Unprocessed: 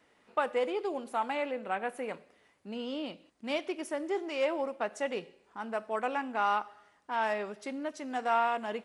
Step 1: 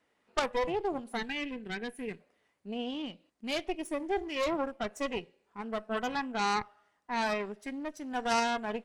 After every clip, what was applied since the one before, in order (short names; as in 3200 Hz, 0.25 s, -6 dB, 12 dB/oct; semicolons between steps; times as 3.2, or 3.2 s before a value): added harmonics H 3 -9 dB, 5 -16 dB, 8 -18 dB, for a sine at -16 dBFS; spectral noise reduction 8 dB; spectral gain 1.17–2.2, 490–1500 Hz -12 dB; gain +3 dB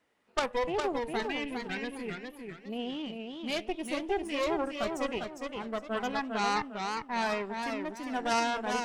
warbling echo 0.404 s, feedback 32%, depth 133 cents, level -5 dB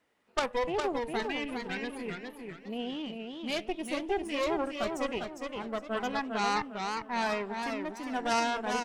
outdoor echo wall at 190 m, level -20 dB